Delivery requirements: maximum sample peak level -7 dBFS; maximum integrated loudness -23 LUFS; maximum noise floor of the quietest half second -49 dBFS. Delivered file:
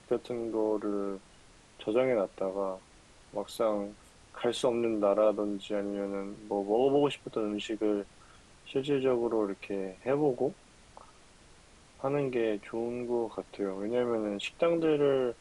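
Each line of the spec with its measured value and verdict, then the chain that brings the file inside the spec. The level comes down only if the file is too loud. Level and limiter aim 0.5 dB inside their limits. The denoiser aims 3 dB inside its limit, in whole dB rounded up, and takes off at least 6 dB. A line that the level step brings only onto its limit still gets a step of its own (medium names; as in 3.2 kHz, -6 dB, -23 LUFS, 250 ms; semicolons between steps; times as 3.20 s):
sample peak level -15.0 dBFS: pass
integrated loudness -31.5 LUFS: pass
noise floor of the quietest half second -57 dBFS: pass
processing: none needed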